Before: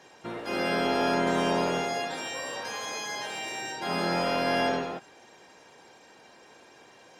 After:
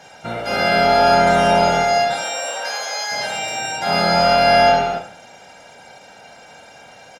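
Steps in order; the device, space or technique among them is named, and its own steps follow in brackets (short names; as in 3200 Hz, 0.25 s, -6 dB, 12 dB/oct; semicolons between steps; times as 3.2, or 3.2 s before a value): 2.13–3.1 HPF 300 Hz -> 660 Hz 12 dB/oct; microphone above a desk (comb 1.4 ms, depth 71%; reverb RT60 0.50 s, pre-delay 21 ms, DRR 5.5 dB); gain +8.5 dB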